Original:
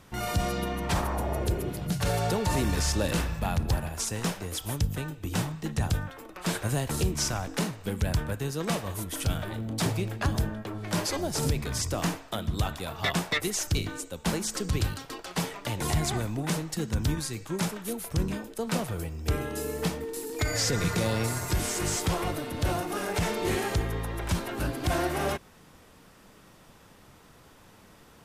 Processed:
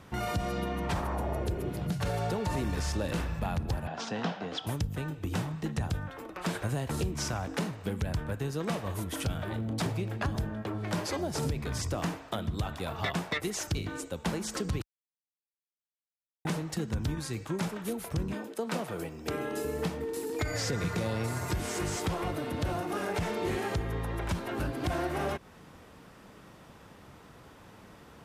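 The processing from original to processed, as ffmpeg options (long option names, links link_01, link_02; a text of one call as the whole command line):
ffmpeg -i in.wav -filter_complex "[0:a]asettb=1/sr,asplit=3[link_01][link_02][link_03];[link_01]atrim=end=3.874[link_04];[link_02]atrim=start=3.87:end=4.67,asetpts=PTS-STARTPTS,afade=type=in:duration=0.004:curve=qsin,afade=type=out:start_time=0.796:duration=0.004:curve=qsin,highpass=frequency=150:width=0.5412,highpass=frequency=150:width=1.3066,equalizer=frequency=240:width_type=q:width=4:gain=4,equalizer=frequency=350:width_type=q:width=4:gain=-5,equalizer=frequency=730:width_type=q:width=4:gain=8,equalizer=frequency=1500:width_type=q:width=4:gain=3,equalizer=frequency=2200:width_type=q:width=4:gain=-3,equalizer=frequency=3200:width_type=q:width=4:gain=4,lowpass=frequency=5000:width=0.5412,lowpass=frequency=5000:width=1.3066[link_05];[link_03]atrim=start=4.666[link_06];[link_04][link_05]acrossfade=duration=0.004:curve1=hsin:curve2=qsin[link_07];[link_07][link_06]acrossfade=duration=0.004:curve1=qsin:curve2=hsin,asettb=1/sr,asplit=3[link_08][link_09][link_10];[link_08]atrim=end=18.334[link_11];[link_09]atrim=start=18.33:end=19.65,asetpts=PTS-STARTPTS,afade=type=in:duration=0.004:curve=qsin,afade=type=out:start_time=1.316:duration=0.004:curve=qsin,highpass=210[link_12];[link_10]atrim=start=19.646[link_13];[link_11][link_12]acrossfade=duration=0.004:curve1=hsin:curve2=qsin[link_14];[link_14][link_13]acrossfade=duration=0.004:curve1=qsin:curve2=hsin,asplit=3[link_15][link_16][link_17];[link_15]atrim=end=14.82,asetpts=PTS-STARTPTS,afade=type=out:start_time=14.816:duration=0.004:curve=hsin[link_18];[link_16]atrim=start=14.82:end=16.45,asetpts=PTS-STARTPTS,volume=0[link_19];[link_17]atrim=start=16.45,asetpts=PTS-STARTPTS,afade=type=in:duration=0.004:curve=hsin[link_20];[link_18][link_19][link_20]concat=n=3:v=0:a=1,highpass=40,highshelf=frequency=3900:gain=-8.5,acompressor=threshold=-34dB:ratio=2.5,volume=3dB" out.wav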